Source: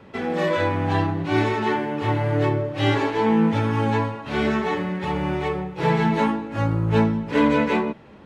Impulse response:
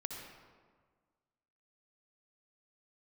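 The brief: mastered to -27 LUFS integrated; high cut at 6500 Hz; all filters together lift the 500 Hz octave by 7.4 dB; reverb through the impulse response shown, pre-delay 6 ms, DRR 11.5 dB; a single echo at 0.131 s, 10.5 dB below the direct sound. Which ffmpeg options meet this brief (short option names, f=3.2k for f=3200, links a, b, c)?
-filter_complex "[0:a]lowpass=6.5k,equalizer=f=500:t=o:g=9,aecho=1:1:131:0.299,asplit=2[a][b];[1:a]atrim=start_sample=2205,adelay=6[c];[b][c]afir=irnorm=-1:irlink=0,volume=-11dB[d];[a][d]amix=inputs=2:normalize=0,volume=-8.5dB"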